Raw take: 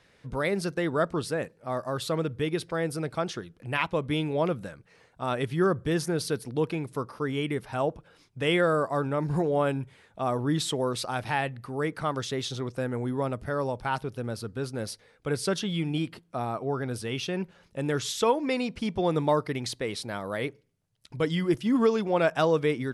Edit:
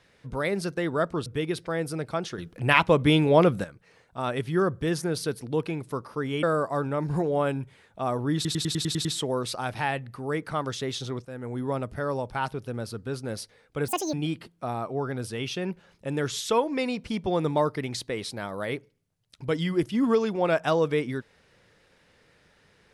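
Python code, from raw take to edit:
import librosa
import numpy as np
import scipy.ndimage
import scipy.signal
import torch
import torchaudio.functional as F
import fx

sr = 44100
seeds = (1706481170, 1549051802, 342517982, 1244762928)

y = fx.edit(x, sr, fx.cut(start_s=1.26, length_s=1.04),
    fx.clip_gain(start_s=3.42, length_s=1.26, db=8.0),
    fx.cut(start_s=7.47, length_s=1.16),
    fx.stutter(start_s=10.55, slice_s=0.1, count=8),
    fx.fade_in_from(start_s=12.75, length_s=0.41, floor_db=-13.0),
    fx.speed_span(start_s=15.38, length_s=0.47, speed=1.85), tone=tone)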